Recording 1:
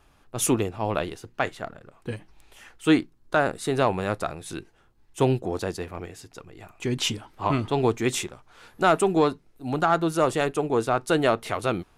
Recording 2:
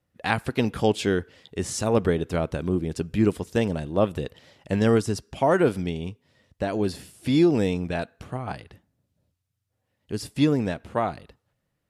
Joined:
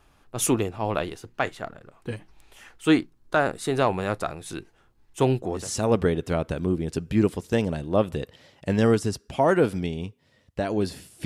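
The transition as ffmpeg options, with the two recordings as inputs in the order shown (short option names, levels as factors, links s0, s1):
-filter_complex "[0:a]apad=whole_dur=11.25,atrim=end=11.25,atrim=end=5.7,asetpts=PTS-STARTPTS[s0];[1:a]atrim=start=1.55:end=7.28,asetpts=PTS-STARTPTS[s1];[s0][s1]acrossfade=d=0.18:c1=tri:c2=tri"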